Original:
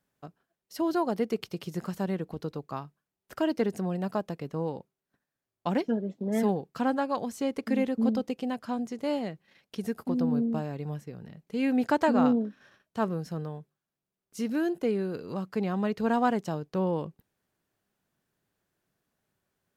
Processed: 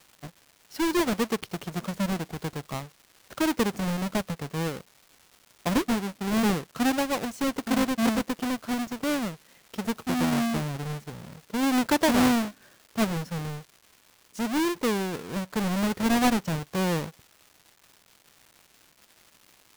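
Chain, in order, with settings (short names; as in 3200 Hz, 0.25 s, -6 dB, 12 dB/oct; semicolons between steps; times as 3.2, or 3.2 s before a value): half-waves squared off; crackle 560/s -41 dBFS; gain -2 dB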